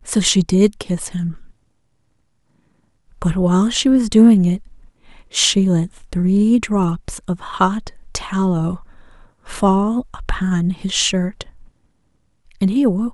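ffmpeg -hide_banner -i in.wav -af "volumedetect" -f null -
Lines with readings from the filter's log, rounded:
mean_volume: -18.3 dB
max_volume: -1.4 dB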